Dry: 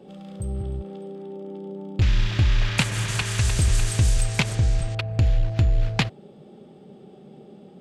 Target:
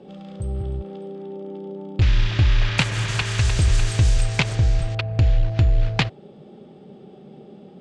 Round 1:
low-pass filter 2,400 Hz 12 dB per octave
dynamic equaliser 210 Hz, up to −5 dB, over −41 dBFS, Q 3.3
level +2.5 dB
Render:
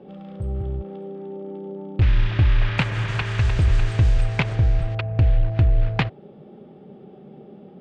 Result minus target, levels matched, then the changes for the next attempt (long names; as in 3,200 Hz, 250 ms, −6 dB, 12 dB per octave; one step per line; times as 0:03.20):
8,000 Hz band −14.5 dB
change: low-pass filter 6,000 Hz 12 dB per octave